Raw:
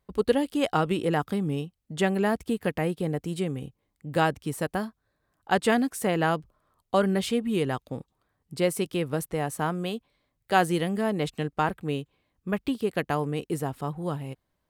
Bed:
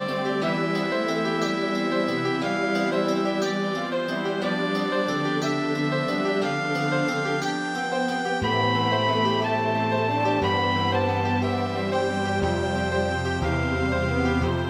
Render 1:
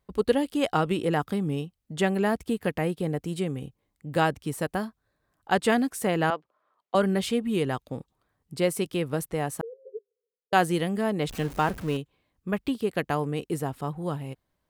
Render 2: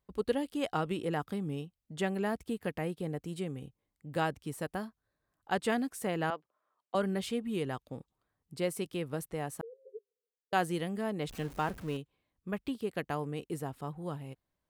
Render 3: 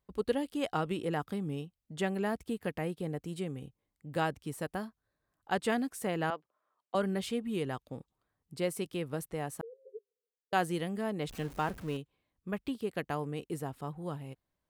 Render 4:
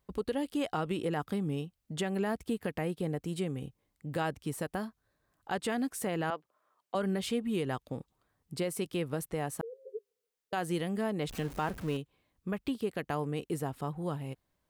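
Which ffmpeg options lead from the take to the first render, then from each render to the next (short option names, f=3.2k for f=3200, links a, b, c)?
-filter_complex "[0:a]asettb=1/sr,asplit=3[a][b][c];[a]atrim=end=6.304[d];[b]atrim=start=6.3:end=6.95,asetpts=PTS-STARTPTS,afade=t=in:d=0.004:c=qsin,afade=t=out:st=0.646:d=0.004:c=qsin,highpass=480,lowpass=3.1k[e];[c]atrim=start=6.946[f];[d][e]acrossfade=d=0.004:c1=hsin:c2=qsin[g];[g][f]acrossfade=d=0.004:c1=qsin:c2=hsin,asettb=1/sr,asplit=3[h][i][j];[h]atrim=end=9.614[k];[i]atrim=start=9.61:end=10.53,asetpts=PTS-STARTPTS,afade=t=in:d=0.004:c=qsin,afade=t=out:st=0.916:d=0.004:c=qsin,asuperpass=centerf=460:order=20:qfactor=3.7[l];[j]atrim=start=10.526[m];[k][l]acrossfade=d=0.004:c1=hsin:c2=qsin[n];[n][m]acrossfade=d=0.004:c1=qsin:c2=hsin,asettb=1/sr,asplit=3[o][p][q];[o]atrim=end=11.294[r];[p]atrim=start=11.29:end=11.97,asetpts=PTS-STARTPTS,afade=t=in:d=0.004:c=qsin,afade=t=out:st=0.676:d=0.004:c=qsin,aeval=exprs='val(0)+0.5*0.0168*sgn(val(0))':c=same[s];[q]atrim=start=11.966[t];[r][s]acrossfade=d=0.004:c1=hsin:c2=qsin[u];[u][t]acrossfade=d=0.004:c1=qsin:c2=hsin"
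-af "volume=-8dB"
-af anull
-filter_complex "[0:a]asplit=2[a][b];[b]acompressor=threshold=-41dB:ratio=6,volume=0dB[c];[a][c]amix=inputs=2:normalize=0,alimiter=limit=-22dB:level=0:latency=1:release=78"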